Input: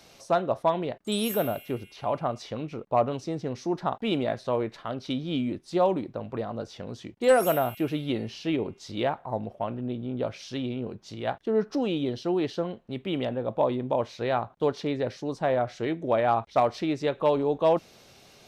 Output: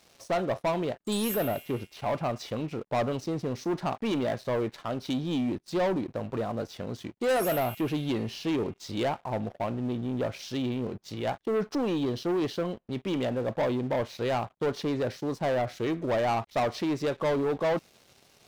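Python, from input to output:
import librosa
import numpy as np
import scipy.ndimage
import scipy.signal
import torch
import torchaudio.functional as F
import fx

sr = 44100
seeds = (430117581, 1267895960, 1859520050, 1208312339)

y = fx.leveller(x, sr, passes=3)
y = y * 10.0 ** (-9.0 / 20.0)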